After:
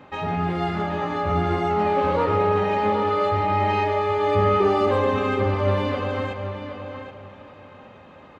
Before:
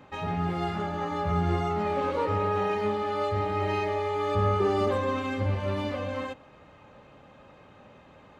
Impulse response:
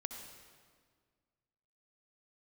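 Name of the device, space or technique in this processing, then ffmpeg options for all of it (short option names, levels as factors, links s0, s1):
filtered reverb send: -filter_complex "[0:a]asplit=2[s0][s1];[s1]highpass=f=160:p=1,lowpass=5100[s2];[1:a]atrim=start_sample=2205[s3];[s2][s3]afir=irnorm=-1:irlink=0,volume=1.33[s4];[s0][s4]amix=inputs=2:normalize=0,asplit=2[s5][s6];[s6]adelay=773,lowpass=f=4700:p=1,volume=0.376,asplit=2[s7][s8];[s8]adelay=773,lowpass=f=4700:p=1,volume=0.23,asplit=2[s9][s10];[s10]adelay=773,lowpass=f=4700:p=1,volume=0.23[s11];[s5][s7][s9][s11]amix=inputs=4:normalize=0"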